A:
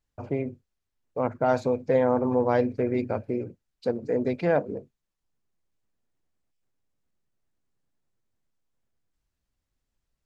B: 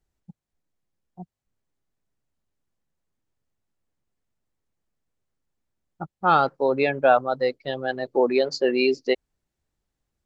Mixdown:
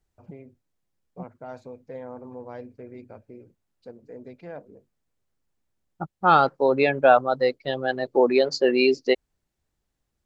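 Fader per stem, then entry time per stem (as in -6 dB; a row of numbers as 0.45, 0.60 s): -16.0, +1.5 dB; 0.00, 0.00 s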